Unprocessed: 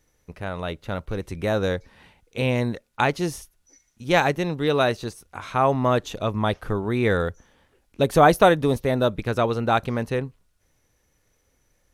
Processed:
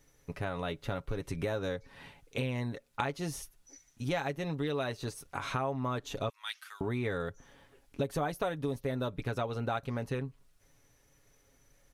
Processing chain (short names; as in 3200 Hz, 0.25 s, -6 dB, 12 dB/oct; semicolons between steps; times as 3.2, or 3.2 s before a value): 6.29–6.81 Bessel high-pass 2600 Hz, order 4; comb 7.2 ms, depth 50%; compressor 5:1, threshold -32 dBFS, peak gain reduction 20 dB